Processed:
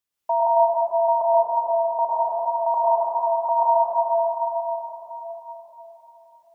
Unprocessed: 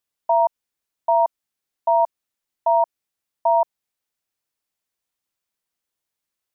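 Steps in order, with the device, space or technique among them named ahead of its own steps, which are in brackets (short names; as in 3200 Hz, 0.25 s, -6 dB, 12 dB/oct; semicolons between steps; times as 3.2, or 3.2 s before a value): 1.21–1.99 Chebyshev low-pass 560 Hz, order 10; 2.74–3.49 elliptic band-stop 440–1000 Hz; bell 570 Hz -2.5 dB 0.59 oct; echo with dull and thin repeats by turns 0.164 s, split 940 Hz, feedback 61%, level -11 dB; cathedral (reverb RT60 4.3 s, pre-delay 98 ms, DRR -9 dB); gain -3.5 dB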